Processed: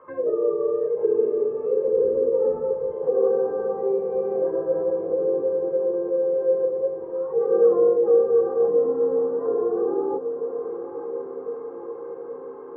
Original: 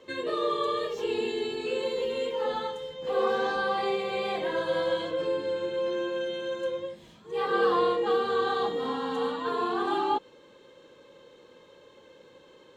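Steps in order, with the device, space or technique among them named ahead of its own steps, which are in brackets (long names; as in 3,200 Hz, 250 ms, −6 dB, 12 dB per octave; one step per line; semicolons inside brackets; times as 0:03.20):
envelope filter bass rig (envelope-controlled low-pass 430–1,200 Hz down, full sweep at −27 dBFS; loudspeaker in its box 60–2,300 Hz, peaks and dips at 110 Hz −4 dB, 230 Hz −8 dB, 370 Hz −6 dB, 1,300 Hz +5 dB)
0:01.88–0:02.92: spectral tilt −2.5 dB per octave
feedback delay with all-pass diffusion 973 ms, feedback 67%, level −9.5 dB
level +1 dB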